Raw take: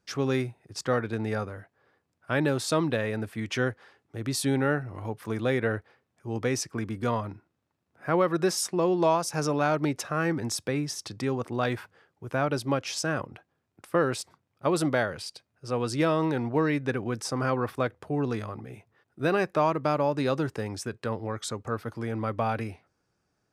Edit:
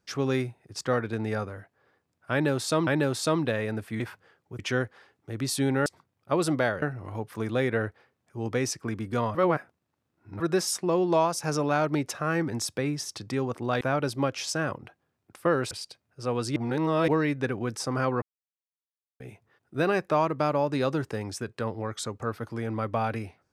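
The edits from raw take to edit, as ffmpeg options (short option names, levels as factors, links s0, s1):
-filter_complex "[0:a]asplit=14[s0][s1][s2][s3][s4][s5][s6][s7][s8][s9][s10][s11][s12][s13];[s0]atrim=end=2.872[s14];[s1]atrim=start=2.318:end=3.452[s15];[s2]atrim=start=11.708:end=12.302[s16];[s3]atrim=start=3.448:end=4.722[s17];[s4]atrim=start=14.198:end=15.162[s18];[s5]atrim=start=4.718:end=7.252[s19];[s6]atrim=start=7.248:end=8.302,asetpts=PTS-STARTPTS,areverse[s20];[s7]atrim=start=8.298:end=11.712[s21];[s8]atrim=start=12.298:end=14.202[s22];[s9]atrim=start=15.158:end=16.012[s23];[s10]atrim=start=16.008:end=16.532,asetpts=PTS-STARTPTS,areverse[s24];[s11]atrim=start=16.528:end=17.67,asetpts=PTS-STARTPTS,afade=t=out:st=1.138:d=0.004:c=hsin[s25];[s12]atrim=start=17.67:end=18.65,asetpts=PTS-STARTPTS,volume=0[s26];[s13]atrim=start=18.65,asetpts=PTS-STARTPTS,afade=t=in:d=0.004:c=hsin[s27];[s14][s15]acrossfade=d=0.004:c1=hsin:c2=hsin[s28];[s28][s16]acrossfade=d=0.004:c1=hsin:c2=hsin[s29];[s29][s17]acrossfade=d=0.004:c1=hsin:c2=hsin[s30];[s30][s18]acrossfade=d=0.004:c1=hsin:c2=hsin[s31];[s31][s19]acrossfade=d=0.004:c1=hsin:c2=hsin[s32];[s32][s20]acrossfade=d=0.004:c1=hsin:c2=hsin[s33];[s33][s21]acrossfade=d=0.004:c1=hsin:c2=hsin[s34];[s34][s22]acrossfade=d=0.004:c1=hsin:c2=hsin[s35];[s35][s23]acrossfade=d=0.004:c1=hsin:c2=hsin[s36];[s36][s24]acrossfade=d=0.004:c1=hsin:c2=hsin[s37];[s25][s26][s27]concat=n=3:v=0:a=1[s38];[s37][s38]acrossfade=d=0.004:c1=hsin:c2=hsin"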